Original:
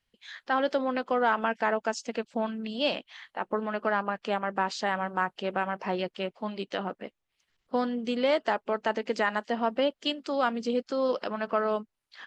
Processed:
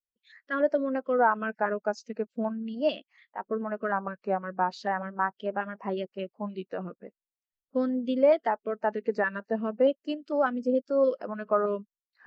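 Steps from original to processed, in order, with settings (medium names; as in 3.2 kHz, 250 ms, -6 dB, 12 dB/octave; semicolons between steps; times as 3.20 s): LFO notch square 3.3 Hz 830–3400 Hz; vibrato 0.4 Hz 93 cents; spectral contrast expander 1.5:1; trim +2 dB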